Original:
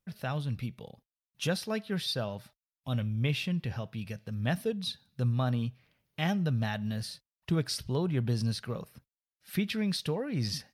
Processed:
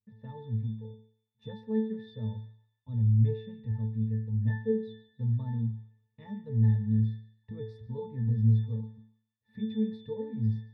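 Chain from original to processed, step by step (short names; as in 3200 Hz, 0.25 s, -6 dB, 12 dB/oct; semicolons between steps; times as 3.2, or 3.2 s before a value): tilt -1.5 dB/oct; octave resonator A, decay 0.49 s; on a send: narrowing echo 0.144 s, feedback 56%, band-pass 2200 Hz, level -13.5 dB; on the sum: gain +8.5 dB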